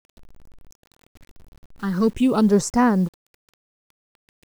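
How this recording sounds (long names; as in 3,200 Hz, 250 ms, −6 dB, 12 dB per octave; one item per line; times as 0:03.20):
phaser sweep stages 6, 0.45 Hz, lowest notch 560–3,300 Hz
a quantiser's noise floor 8 bits, dither none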